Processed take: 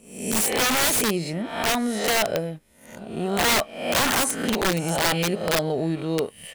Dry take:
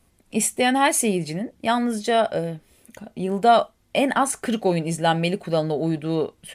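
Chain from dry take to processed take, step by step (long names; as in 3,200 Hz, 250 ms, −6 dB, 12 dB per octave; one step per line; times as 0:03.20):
peak hold with a rise ahead of every peak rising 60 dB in 0.71 s
leveller curve on the samples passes 1
wrap-around overflow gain 9.5 dB
level −6 dB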